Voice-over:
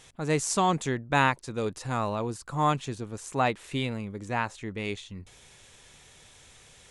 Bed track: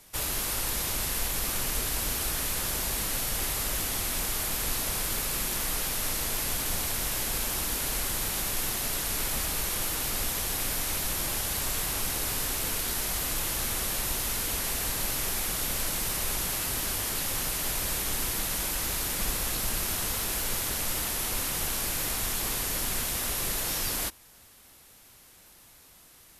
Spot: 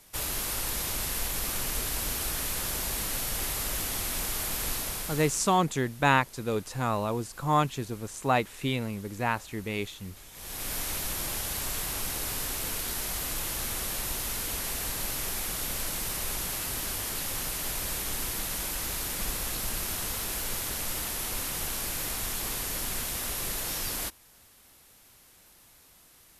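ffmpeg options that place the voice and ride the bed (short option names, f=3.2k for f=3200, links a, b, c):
-filter_complex "[0:a]adelay=4900,volume=0.5dB[a];[1:a]volume=17dB,afade=t=out:st=4.69:d=0.9:silence=0.105925,afade=t=in:st=10.32:d=0.44:silence=0.11885[b];[a][b]amix=inputs=2:normalize=0"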